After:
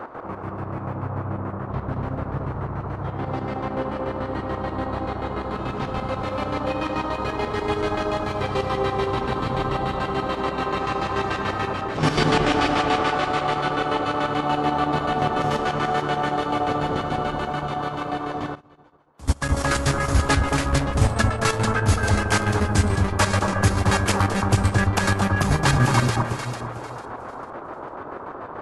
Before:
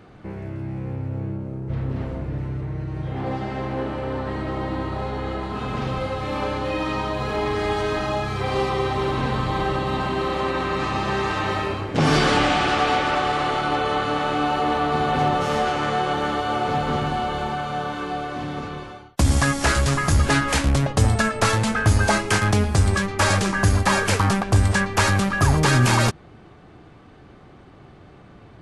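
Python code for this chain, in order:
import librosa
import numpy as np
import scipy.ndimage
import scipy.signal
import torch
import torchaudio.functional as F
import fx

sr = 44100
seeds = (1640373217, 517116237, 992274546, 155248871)

p1 = fx.dmg_noise_band(x, sr, seeds[0], low_hz=260.0, high_hz=1300.0, level_db=-34.0)
p2 = fx.rev_spring(p1, sr, rt60_s=2.6, pass_ms=(34,), chirp_ms=50, drr_db=16.0)
p3 = fx.chopper(p2, sr, hz=6.9, depth_pct=65, duty_pct=40)
p4 = p3 + fx.echo_alternate(p3, sr, ms=224, hz=1400.0, feedback_pct=54, wet_db=-2.5, dry=0)
y = fx.upward_expand(p4, sr, threshold_db=-34.0, expansion=2.5, at=(18.55, 19.49))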